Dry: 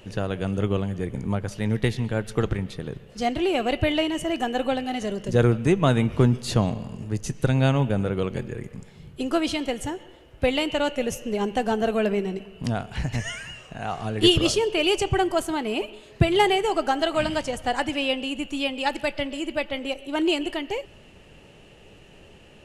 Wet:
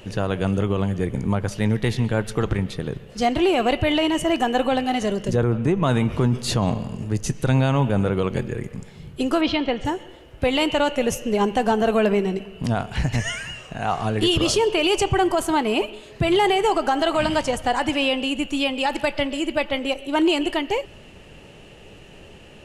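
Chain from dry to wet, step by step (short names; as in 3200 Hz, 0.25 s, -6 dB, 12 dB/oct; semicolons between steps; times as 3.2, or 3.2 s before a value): 5.36–5.83 high shelf 2200 Hz -9 dB; 9.41–9.85 LPF 4200 Hz 24 dB/oct; dynamic EQ 1000 Hz, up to +5 dB, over -39 dBFS, Q 2.2; limiter -16 dBFS, peak gain reduction 11 dB; gain +5 dB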